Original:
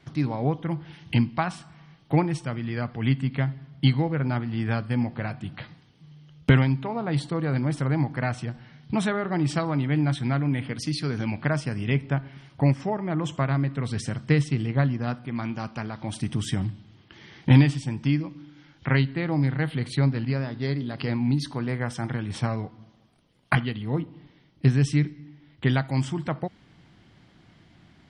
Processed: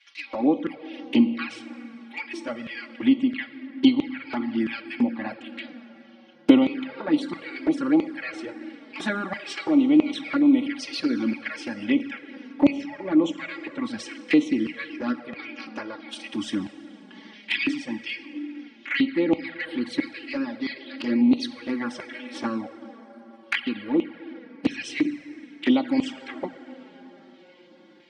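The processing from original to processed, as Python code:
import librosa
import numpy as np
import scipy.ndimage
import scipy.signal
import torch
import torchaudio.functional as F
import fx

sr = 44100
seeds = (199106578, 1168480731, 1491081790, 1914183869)

y = x + 0.83 * np.pad(x, (int(3.6 * sr / 1000.0), 0))[:len(x)]
y = fx.filter_lfo_highpass(y, sr, shape='square', hz=1.5, low_hz=300.0, high_hz=2400.0, q=2.3)
y = fx.bandpass_edges(y, sr, low_hz=100.0, high_hz=6000.0)
y = fx.rev_plate(y, sr, seeds[0], rt60_s=4.7, hf_ratio=0.45, predelay_ms=0, drr_db=11.5)
y = fx.env_flanger(y, sr, rest_ms=6.2, full_db=-17.5)
y = F.gain(torch.from_numpy(y), 1.0).numpy()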